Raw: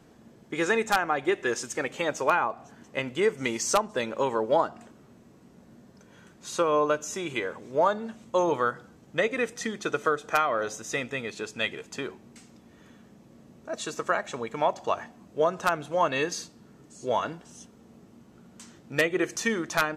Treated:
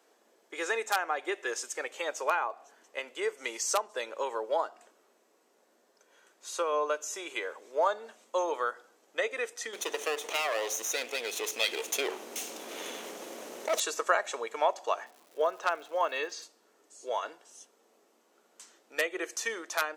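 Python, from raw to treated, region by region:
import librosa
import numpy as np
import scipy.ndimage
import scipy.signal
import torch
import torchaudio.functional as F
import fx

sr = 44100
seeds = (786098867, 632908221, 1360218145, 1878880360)

y = fx.chain(x, sr, fx.lower_of_two(delay_ms=0.31),
    fx.env_flatten(amount_pct=50), at=(9.73, 13.8))
y = fx.lowpass(y, sr, hz=4800.0, slope=12, at=(15.04, 16.41), fade=0.02)
y = fx.dmg_crackle(y, sr, seeds[0], per_s=290.0, level_db=-45.0, at=(15.04, 16.41), fade=0.02)
y = scipy.signal.sosfilt(scipy.signal.butter(4, 410.0, 'highpass', fs=sr, output='sos'), y)
y = fx.high_shelf(y, sr, hz=5800.0, db=6.0)
y = fx.rider(y, sr, range_db=10, speed_s=2.0)
y = y * librosa.db_to_amplitude(-4.5)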